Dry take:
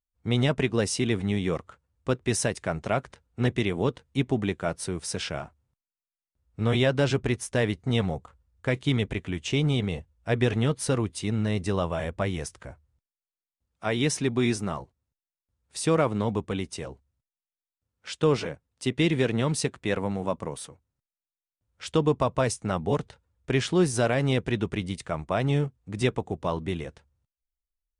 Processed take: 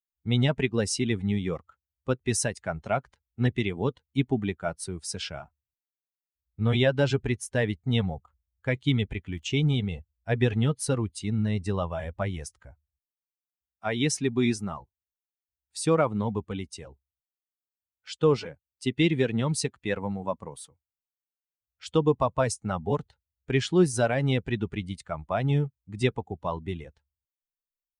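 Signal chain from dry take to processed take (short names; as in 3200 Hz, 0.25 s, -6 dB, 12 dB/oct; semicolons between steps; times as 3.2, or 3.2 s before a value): per-bin expansion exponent 1.5; 9.31–9.81 crackle 26/s -52 dBFS; gain +2.5 dB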